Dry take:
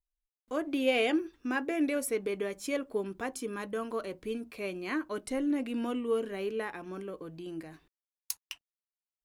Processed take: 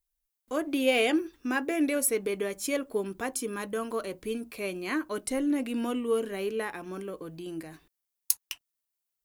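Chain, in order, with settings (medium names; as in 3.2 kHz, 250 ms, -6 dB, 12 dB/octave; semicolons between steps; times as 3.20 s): treble shelf 7.7 kHz +11.5 dB; trim +2.5 dB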